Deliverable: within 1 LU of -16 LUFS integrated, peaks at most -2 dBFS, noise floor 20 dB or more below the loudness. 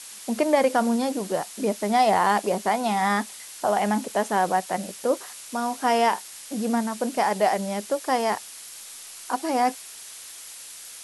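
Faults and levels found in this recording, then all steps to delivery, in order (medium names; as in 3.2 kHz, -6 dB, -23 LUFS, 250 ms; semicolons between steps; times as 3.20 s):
noise floor -42 dBFS; noise floor target -45 dBFS; loudness -24.5 LUFS; peak level -9.0 dBFS; loudness target -16.0 LUFS
-> noise print and reduce 6 dB; trim +8.5 dB; peak limiter -2 dBFS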